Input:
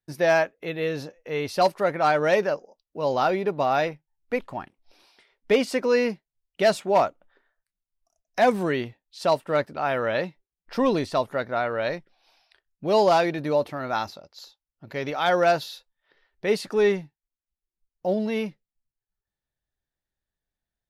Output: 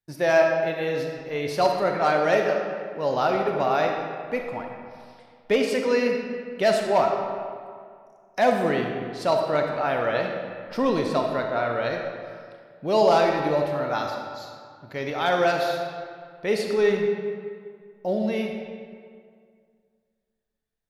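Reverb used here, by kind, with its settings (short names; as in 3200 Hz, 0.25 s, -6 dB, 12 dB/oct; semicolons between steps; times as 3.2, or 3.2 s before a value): digital reverb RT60 2.1 s, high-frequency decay 0.65×, pre-delay 5 ms, DRR 2 dB; gain -1.5 dB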